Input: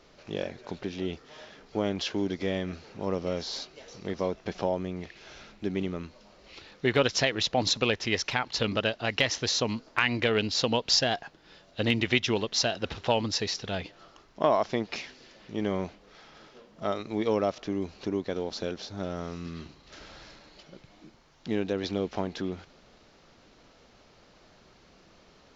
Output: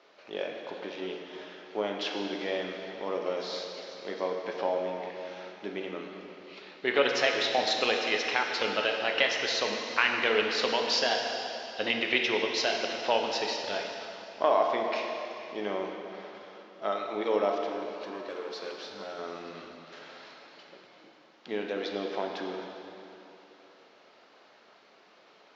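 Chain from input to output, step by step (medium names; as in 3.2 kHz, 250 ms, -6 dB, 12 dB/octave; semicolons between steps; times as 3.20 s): 17.53–19.19 s: overload inside the chain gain 33 dB; band-pass 450–3900 Hz; plate-style reverb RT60 3.1 s, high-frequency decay 0.9×, DRR 1 dB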